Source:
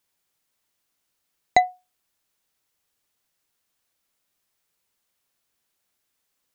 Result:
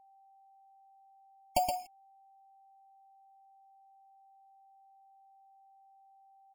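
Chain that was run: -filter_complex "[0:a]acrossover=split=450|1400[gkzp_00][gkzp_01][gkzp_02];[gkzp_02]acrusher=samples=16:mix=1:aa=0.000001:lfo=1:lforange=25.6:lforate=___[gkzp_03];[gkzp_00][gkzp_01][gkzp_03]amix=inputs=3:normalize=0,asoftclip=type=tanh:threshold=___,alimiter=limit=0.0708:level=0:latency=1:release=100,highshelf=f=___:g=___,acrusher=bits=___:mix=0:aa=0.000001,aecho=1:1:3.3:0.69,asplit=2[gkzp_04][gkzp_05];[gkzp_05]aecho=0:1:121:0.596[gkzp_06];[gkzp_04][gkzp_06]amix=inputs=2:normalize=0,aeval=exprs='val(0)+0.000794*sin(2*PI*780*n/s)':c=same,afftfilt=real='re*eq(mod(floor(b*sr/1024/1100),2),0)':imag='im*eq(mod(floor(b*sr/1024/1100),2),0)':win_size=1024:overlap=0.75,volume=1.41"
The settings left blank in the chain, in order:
0.31, 0.2, 3500, 12, 7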